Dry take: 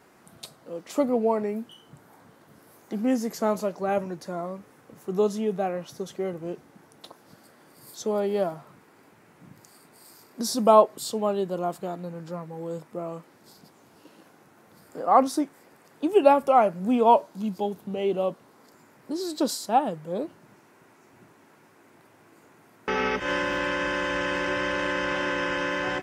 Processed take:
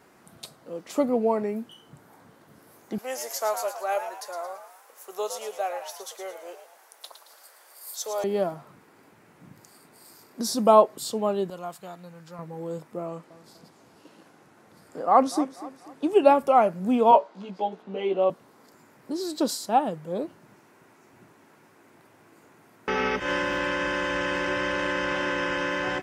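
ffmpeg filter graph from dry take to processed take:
-filter_complex "[0:a]asettb=1/sr,asplit=3[s0][s1][s2];[s0]atrim=end=2.984[s3];[s1]atrim=start=2.98:end=8.24,asetpts=PTS-STARTPTS,afade=t=in:d=0.004:c=qsin,afade=t=out:st=5.256:d=0.004:c=qsin,highpass=f=540:w=0.5412,highpass=f=540:w=1.3066,highshelf=f=5500:g=10.5,asplit=6[s4][s5][s6][s7][s8][s9];[s5]adelay=111,afreqshift=82,volume=0.355[s10];[s6]adelay=222,afreqshift=164,volume=0.15[s11];[s7]adelay=333,afreqshift=246,volume=0.0624[s12];[s8]adelay=444,afreqshift=328,volume=0.0263[s13];[s9]adelay=555,afreqshift=410,volume=0.0111[s14];[s4][s10][s11][s12][s13][s14]amix=inputs=6:normalize=0,atrim=end_sample=231966[s15];[s2]atrim=start=8.236[s16];[s3][s15]acrossfade=d=0.004:c1=hsin:c2=qsin[s17];[s17][s16]acrossfade=d=0.004:c1=qsin:c2=hsin,asettb=1/sr,asplit=3[s18][s19][s20];[s18]atrim=end=11.504[s21];[s19]atrim=start=11.5:end=12.39,asetpts=PTS-STARTPTS,afade=t=in:d=0.004:c=qsin,afade=t=out:st=0.886:d=0.004:c=qsin,highpass=100,equalizer=f=320:t=o:w=2.4:g=-13[s22];[s20]atrim=start=12.386[s23];[s21][s22]acrossfade=d=0.004:c1=hsin:c2=qsin[s24];[s24][s23]acrossfade=d=0.004:c1=qsin:c2=hsin,asettb=1/sr,asplit=3[s25][s26][s27];[s25]atrim=end=13.064[s28];[s26]atrim=start=13.06:end=16.39,asetpts=PTS-STARTPTS,afade=t=in:d=0.004:c=qsin,afade=t=out:st=3.326:d=0.004:c=qsin,lowpass=11000,aecho=1:1:244|488|732|976:0.158|0.0634|0.0254|0.0101,atrim=end_sample=146853[s29];[s27]atrim=start=16.386[s30];[s28][s29]acrossfade=d=0.004:c1=hsin:c2=qsin[s31];[s31][s30]acrossfade=d=0.004:c1=qsin:c2=hsin,asettb=1/sr,asplit=3[s32][s33][s34];[s32]atrim=end=17.114[s35];[s33]atrim=start=17.11:end=18.3,asetpts=PTS-STARTPTS,afade=t=in:d=0.004:c=qsin,afade=t=out:st=1.186:d=0.004:c=qsin,highpass=330,lowpass=3700,asplit=2[s36][s37];[s37]adelay=16,volume=0.794[s38];[s36][s38]amix=inputs=2:normalize=0,atrim=end_sample=52479[s39];[s34]atrim=start=18.296[s40];[s35][s39]acrossfade=d=0.004:c1=hsin:c2=qsin[s41];[s41][s40]acrossfade=d=0.004:c1=qsin:c2=hsin"

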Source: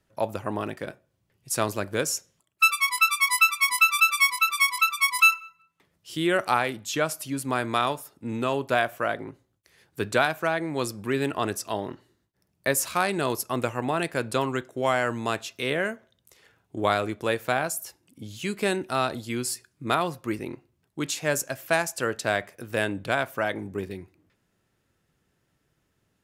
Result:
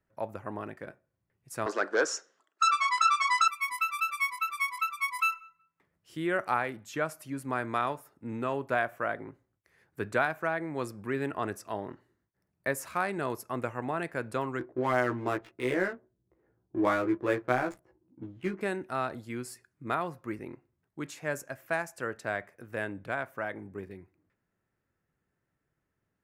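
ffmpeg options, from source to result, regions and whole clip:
-filter_complex "[0:a]asettb=1/sr,asplit=3[s0][s1][s2];[s0]atrim=end=1.664[s3];[s1]atrim=start=1.66:end=3.48,asetpts=PTS-STARTPTS,afade=t=in:d=0.004:c=qsin,afade=t=out:st=1.816:d=0.004:c=qsin,aeval=exprs='0.422*sin(PI/2*3.55*val(0)/0.422)':c=same,highpass=f=350:w=0.5412,highpass=f=350:w=1.3066,equalizer=f=370:t=q:w=4:g=-3,equalizer=f=580:t=q:w=4:g=-6,equalizer=f=940:t=q:w=4:g=-4,equalizer=f=1400:t=q:w=4:g=3,equalizer=f=2300:t=q:w=4:g=-9,lowpass=f=6600:w=0.5412,lowpass=f=6600:w=1.3066[s4];[s2]atrim=start=3.476[s5];[s3][s4]acrossfade=d=0.004:c1=hsin:c2=qsin[s6];[s6][s5]acrossfade=d=0.004:c1=qsin:c2=hsin,asettb=1/sr,asplit=3[s7][s8][s9];[s7]atrim=end=14.594[s10];[s8]atrim=start=14.59:end=18.61,asetpts=PTS-STARTPTS,afade=t=in:d=0.004:c=qsin,afade=t=out:st=4.016:d=0.004:c=qsin,equalizer=f=340:t=o:w=0.22:g=14.5,adynamicsmooth=sensitivity=6:basefreq=520,asplit=2[s11][s12];[s12]adelay=16,volume=0.794[s13];[s11][s13]amix=inputs=2:normalize=0,atrim=end_sample=177282[s14];[s9]atrim=start=18.606[s15];[s10][s14]acrossfade=d=0.004:c1=hsin:c2=qsin[s16];[s16][s15]acrossfade=d=0.004:c1=qsin:c2=hsin,highshelf=f=2500:t=q:w=1.5:g=-7.5,dynaudnorm=f=340:g=31:m=1.68,volume=0.376"

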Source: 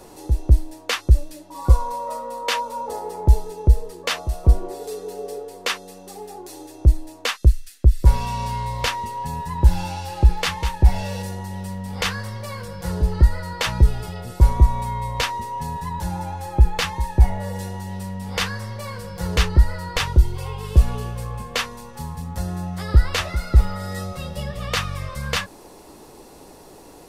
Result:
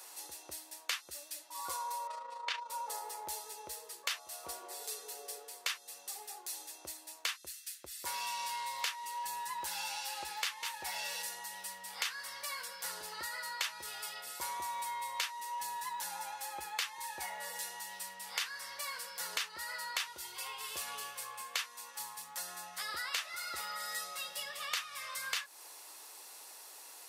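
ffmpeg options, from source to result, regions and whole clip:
-filter_complex "[0:a]asettb=1/sr,asplit=3[s0][s1][s2];[s0]atrim=end=2.074[s3];[s1]atrim=start=2.07:end=2.7,asetpts=PTS-STARTPTS,afade=t=in:d=0.004:c=qsin,afade=t=out:st=0.626:d=0.004:c=qsin,tremolo=f=27:d=0.571,highpass=100,lowpass=4000[s4];[s2]atrim=start=2.696[s5];[s3][s4]acrossfade=d=0.004:c1=hsin:c2=qsin[s6];[s6][s5]acrossfade=d=0.004:c1=qsin:c2=hsin,highpass=1400,highshelf=f=8200:g=6.5,acompressor=threshold=0.0224:ratio=4,volume=0.794"

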